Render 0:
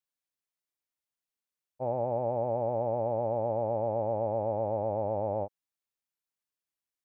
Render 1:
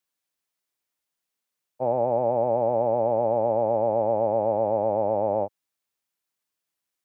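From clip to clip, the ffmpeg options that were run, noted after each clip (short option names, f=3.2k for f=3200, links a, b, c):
-filter_complex "[0:a]lowshelf=f=79:g=-8.5,acrossover=split=120[a][b];[a]alimiter=level_in=32.5dB:limit=-24dB:level=0:latency=1,volume=-32.5dB[c];[c][b]amix=inputs=2:normalize=0,volume=7.5dB"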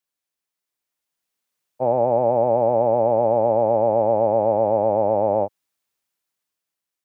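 -af "dynaudnorm=f=260:g=9:m=7dB,volume=-2dB"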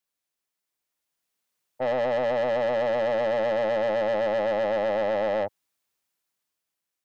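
-af "asoftclip=type=tanh:threshold=-21.5dB"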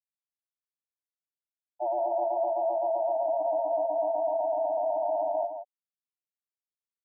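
-filter_complex "[0:a]afreqshift=92,afftfilt=real='re*gte(hypot(re,im),0.126)':imag='im*gte(hypot(re,im),0.126)':win_size=1024:overlap=0.75,asplit=2[a][b];[b]adelay=163.3,volume=-8dB,highshelf=f=4k:g=-3.67[c];[a][c]amix=inputs=2:normalize=0,volume=-3dB"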